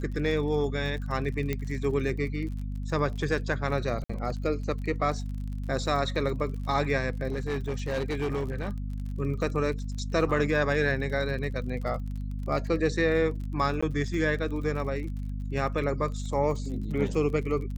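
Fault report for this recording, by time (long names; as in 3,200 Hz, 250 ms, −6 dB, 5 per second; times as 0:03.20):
surface crackle 39 per second −37 dBFS
mains hum 50 Hz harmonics 5 −33 dBFS
0:01.53: click −16 dBFS
0:04.04–0:04.09: drop-out 55 ms
0:07.32–0:08.70: clipping −25 dBFS
0:13.81–0:13.82: drop-out 15 ms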